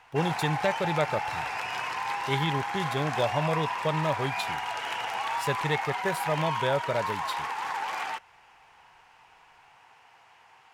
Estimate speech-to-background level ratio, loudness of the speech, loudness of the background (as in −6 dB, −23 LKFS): 1.0 dB, −30.5 LKFS, −31.5 LKFS